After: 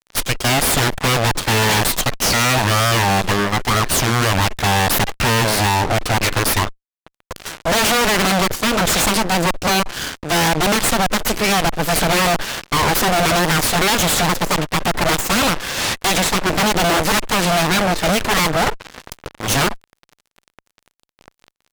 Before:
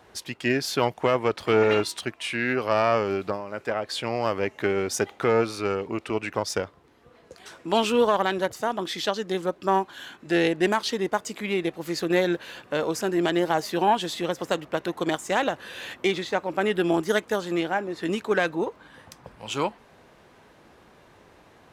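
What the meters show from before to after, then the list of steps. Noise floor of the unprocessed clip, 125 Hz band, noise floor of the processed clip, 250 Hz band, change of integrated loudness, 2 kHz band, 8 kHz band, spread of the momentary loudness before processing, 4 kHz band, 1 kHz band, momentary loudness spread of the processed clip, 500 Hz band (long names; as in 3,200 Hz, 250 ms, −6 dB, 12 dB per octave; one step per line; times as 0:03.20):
−55 dBFS, +15.5 dB, −82 dBFS, +6.5 dB, +9.0 dB, +11.5 dB, +18.5 dB, 8 LU, +14.0 dB, +9.5 dB, 5 LU, +3.0 dB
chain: harmonic generator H 4 −28 dB, 7 −14 dB, 8 −8 dB, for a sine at −9 dBFS
fuzz pedal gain 43 dB, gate −51 dBFS
level −1.5 dB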